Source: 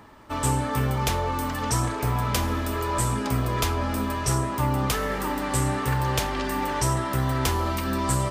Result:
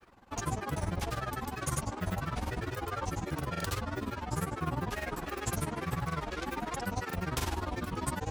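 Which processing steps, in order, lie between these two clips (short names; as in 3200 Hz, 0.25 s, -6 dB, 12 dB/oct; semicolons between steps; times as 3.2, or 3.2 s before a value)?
grains 67 ms, grains 20/s, pitch spread up and down by 7 st; gain -7 dB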